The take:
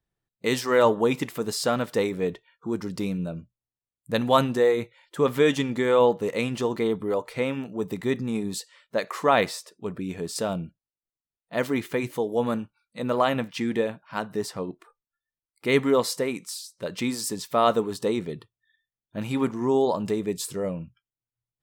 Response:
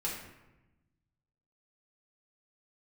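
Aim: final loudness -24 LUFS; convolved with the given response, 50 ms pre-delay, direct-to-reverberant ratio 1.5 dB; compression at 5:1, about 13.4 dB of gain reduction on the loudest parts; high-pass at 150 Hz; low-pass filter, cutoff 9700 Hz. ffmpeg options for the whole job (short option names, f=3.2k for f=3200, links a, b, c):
-filter_complex "[0:a]highpass=150,lowpass=9.7k,acompressor=threshold=-30dB:ratio=5,asplit=2[a][b];[1:a]atrim=start_sample=2205,adelay=50[c];[b][c]afir=irnorm=-1:irlink=0,volume=-5dB[d];[a][d]amix=inputs=2:normalize=0,volume=8dB"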